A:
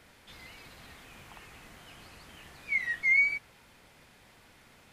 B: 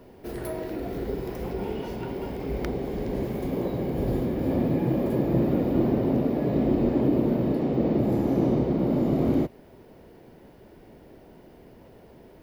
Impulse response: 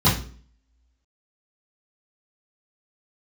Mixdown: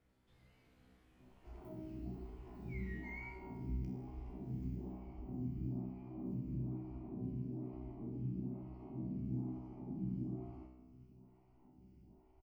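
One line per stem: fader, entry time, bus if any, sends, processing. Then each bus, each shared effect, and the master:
-6.5 dB, 0.00 s, no send, dry
0.0 dB, 1.20 s, no send, compressor 5:1, threshold -28 dBFS, peak gain reduction 10 dB; fixed phaser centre 2500 Hz, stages 8; photocell phaser 1.1 Hz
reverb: off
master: tilt shelf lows +8 dB, about 680 Hz; resonator 63 Hz, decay 1.1 s, harmonics all, mix 90%

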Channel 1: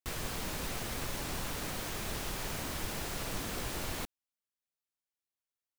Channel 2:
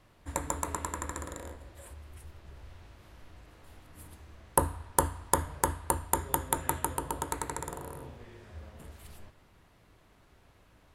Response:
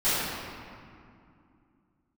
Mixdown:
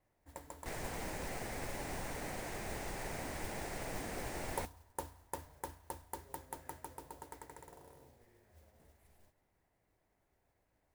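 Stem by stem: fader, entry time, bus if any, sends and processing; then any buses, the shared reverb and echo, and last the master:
-4.0 dB, 0.60 s, no send, elliptic low-pass 9400 Hz
-18.5 dB, 0.00 s, no send, dry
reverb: off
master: EQ curve 190 Hz 0 dB, 810 Hz +6 dB, 1200 Hz -4 dB, 2000 Hz +4 dB, 3300 Hz -10 dB, 9700 Hz -1 dB; modulation noise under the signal 12 dB

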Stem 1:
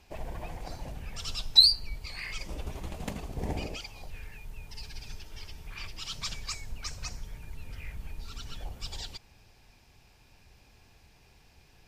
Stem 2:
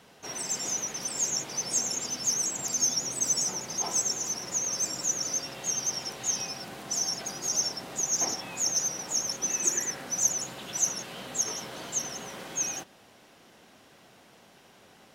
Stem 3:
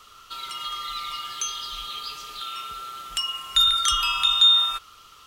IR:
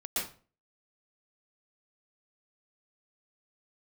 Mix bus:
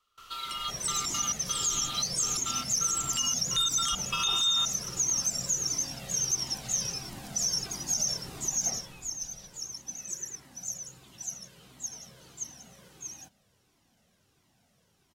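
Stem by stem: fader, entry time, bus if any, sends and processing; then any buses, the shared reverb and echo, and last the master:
-17.0 dB, 0.40 s, no send, dry
8.61 s -0.5 dB -> 9.12 s -12.5 dB, 0.45 s, no send, tone controls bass +12 dB, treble +8 dB; cascading flanger falling 1.5 Hz
-2.0 dB, 0.00 s, no send, step gate "..xxxxxx..xx.xx" 171 bpm -24 dB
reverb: off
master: limiter -19.5 dBFS, peak gain reduction 12.5 dB

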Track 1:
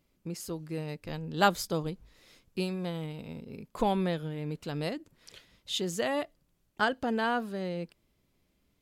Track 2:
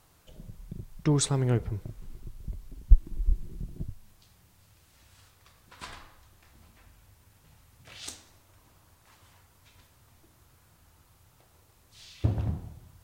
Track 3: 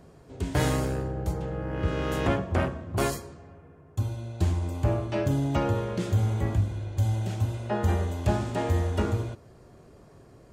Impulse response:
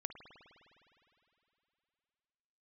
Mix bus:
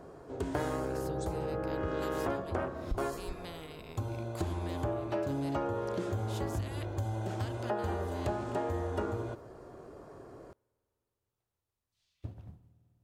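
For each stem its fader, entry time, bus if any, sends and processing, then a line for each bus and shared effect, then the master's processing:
-13.5 dB, 0.60 s, no send, spectral compressor 2:1
-12.0 dB, 0.00 s, send -5.5 dB, upward expander 1.5:1, over -47 dBFS
-4.0 dB, 0.00 s, send -22.5 dB, band shelf 670 Hz +9 dB 2.8 oct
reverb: on, RT60 3.1 s, pre-delay 51 ms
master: compressor 4:1, threshold -32 dBFS, peak gain reduction 13 dB

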